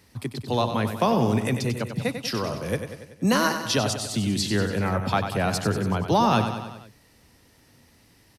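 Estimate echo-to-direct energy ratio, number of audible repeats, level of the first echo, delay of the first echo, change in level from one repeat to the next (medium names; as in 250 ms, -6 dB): -6.5 dB, 5, -8.5 dB, 95 ms, -4.5 dB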